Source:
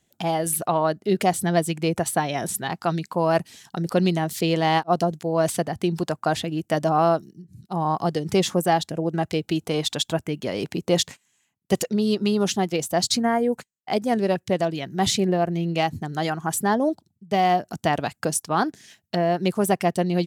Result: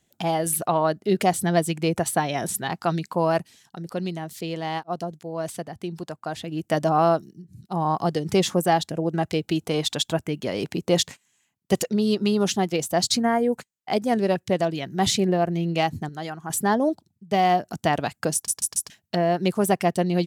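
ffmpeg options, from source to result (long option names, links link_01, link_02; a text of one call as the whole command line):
ffmpeg -i in.wav -filter_complex "[0:a]asplit=9[link_01][link_02][link_03][link_04][link_05][link_06][link_07][link_08][link_09];[link_01]atrim=end=3.55,asetpts=PTS-STARTPTS,afade=type=out:start_time=3.24:duration=0.31:silence=0.375837[link_10];[link_02]atrim=start=3.55:end=6.37,asetpts=PTS-STARTPTS,volume=-8.5dB[link_11];[link_03]atrim=start=6.37:end=16.092,asetpts=PTS-STARTPTS,afade=type=in:duration=0.31:silence=0.375837[link_12];[link_04]atrim=start=16.088:end=16.502,asetpts=PTS-STARTPTS,volume=-7.5dB[link_13];[link_05]atrim=start=16.498:end=18.482[link_14];[link_06]atrim=start=18.338:end=18.482[link_15];[link_07]atrim=start=18.338:end=18.482[link_16];[link_08]atrim=start=18.338:end=18.482[link_17];[link_09]atrim=start=18.898[link_18];[link_10][link_11][link_12]concat=n=3:v=0:a=1[link_19];[link_19][link_13]acrossfade=duration=0.004:curve1=hsin:curve2=hsin[link_20];[link_20][link_14]acrossfade=duration=0.004:curve1=hsin:curve2=hsin[link_21];[link_21][link_15]acrossfade=duration=0.004:curve1=hsin:curve2=hsin[link_22];[link_22][link_16]acrossfade=duration=0.004:curve1=hsin:curve2=hsin[link_23];[link_23][link_17]acrossfade=duration=0.004:curve1=hsin:curve2=hsin[link_24];[link_24][link_18]acrossfade=duration=0.004:curve1=hsin:curve2=hsin" out.wav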